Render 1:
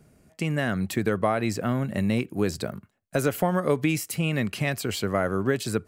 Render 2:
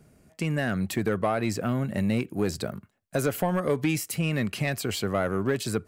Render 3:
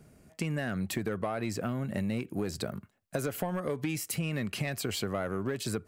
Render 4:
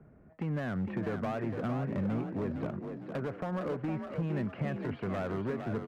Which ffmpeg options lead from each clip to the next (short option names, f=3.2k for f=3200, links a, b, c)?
-af "asoftclip=type=tanh:threshold=-15.5dB"
-af "acompressor=threshold=-29dB:ratio=6"
-filter_complex "[0:a]lowpass=f=1.7k:w=0.5412,lowpass=f=1.7k:w=1.3066,acrossover=split=130[a][b];[b]asoftclip=type=hard:threshold=-31dB[c];[a][c]amix=inputs=2:normalize=0,asplit=6[d][e][f][g][h][i];[e]adelay=459,afreqshift=43,volume=-6.5dB[j];[f]adelay=918,afreqshift=86,volume=-14.5dB[k];[g]adelay=1377,afreqshift=129,volume=-22.4dB[l];[h]adelay=1836,afreqshift=172,volume=-30.4dB[m];[i]adelay=2295,afreqshift=215,volume=-38.3dB[n];[d][j][k][l][m][n]amix=inputs=6:normalize=0"